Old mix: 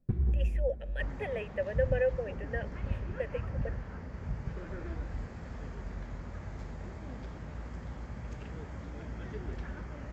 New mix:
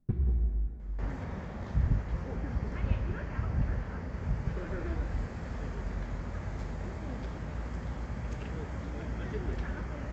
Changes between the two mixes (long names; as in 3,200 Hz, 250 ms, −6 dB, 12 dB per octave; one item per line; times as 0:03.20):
speech: muted
second sound +4.5 dB